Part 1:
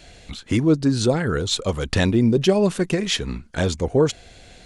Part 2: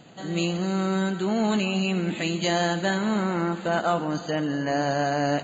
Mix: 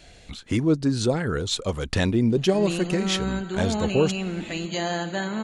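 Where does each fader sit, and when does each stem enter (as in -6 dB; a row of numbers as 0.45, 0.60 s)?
-3.5, -3.5 dB; 0.00, 2.30 s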